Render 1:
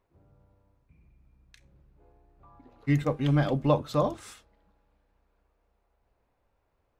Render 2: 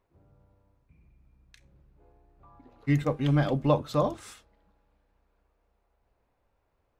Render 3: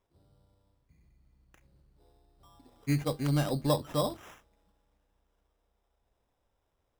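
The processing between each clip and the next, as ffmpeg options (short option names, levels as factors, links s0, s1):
-af anull
-af "acrusher=samples=10:mix=1:aa=0.000001,volume=0.631"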